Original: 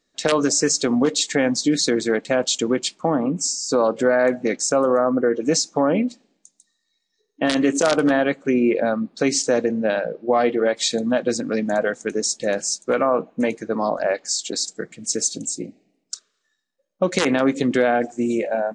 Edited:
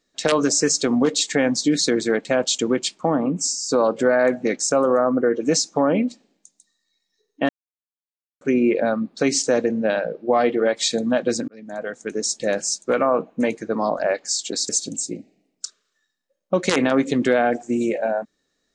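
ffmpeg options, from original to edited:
-filter_complex "[0:a]asplit=5[a][b][c][d][e];[a]atrim=end=7.49,asetpts=PTS-STARTPTS,afade=t=out:st=7.486:d=0.004:c=hsin[f];[b]atrim=start=7.49:end=8.41,asetpts=PTS-STARTPTS,volume=0[g];[c]atrim=start=8.41:end=11.48,asetpts=PTS-STARTPTS,afade=t=in:d=0.004:c=hsin,afade=t=out:st=3.066:d=0.004:c=hsin[h];[d]atrim=start=11.48:end=14.692,asetpts=PTS-STARTPTS,afade=t=in:d=0.9[i];[e]atrim=start=15.178[j];[f][g][h][i]concat=n=4:v=0:a=1[k];[k][j]acrossfade=d=0.004:c1=hsin:c2=hsin"

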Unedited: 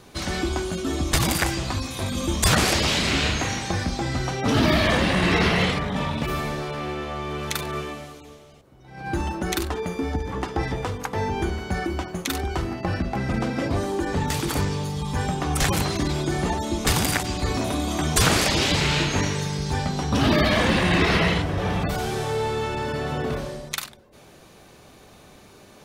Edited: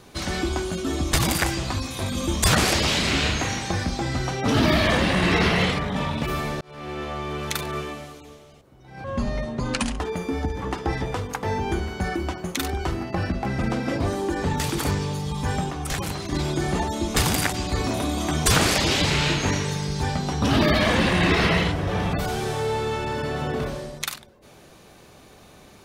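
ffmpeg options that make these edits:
-filter_complex "[0:a]asplit=6[a][b][c][d][e][f];[a]atrim=end=6.61,asetpts=PTS-STARTPTS,afade=t=out:st=6.606:d=0.004:c=hsin[g];[b]atrim=start=6.61:end=9.044,asetpts=PTS-STARTPTS,afade=t=in:d=0.42[h];[c]atrim=start=9.04:end=9.7,asetpts=PTS-STARTPTS,asetrate=30429,aresample=44100[i];[d]atrim=start=9.696:end=15.412[j];[e]atrim=start=15.408:end=16.032,asetpts=PTS-STARTPTS,volume=-6dB[k];[f]atrim=start=16.028[l];[g][h]concat=n=2:v=0:a=1[m];[m][i]acrossfade=d=0.004:c1=hsin:c2=hsin[n];[n][j]acrossfade=d=0.004:c1=hsin:c2=hsin[o];[o][k]acrossfade=d=0.004:c1=hsin:c2=hsin[p];[p][l]acrossfade=d=0.004:c1=hsin:c2=hsin"

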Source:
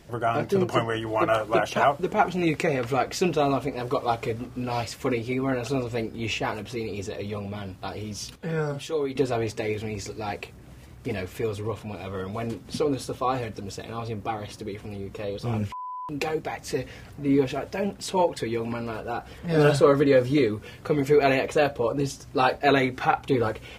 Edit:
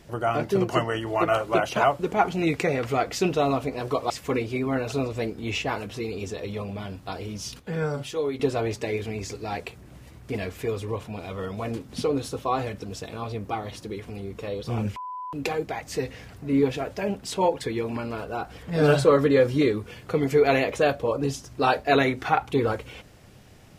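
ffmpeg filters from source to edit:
-filter_complex "[0:a]asplit=2[a][b];[a]atrim=end=4.102[c];[b]atrim=start=4.858[d];[c][d]acrossfade=d=0.004:c1=hsin:c2=hsin"

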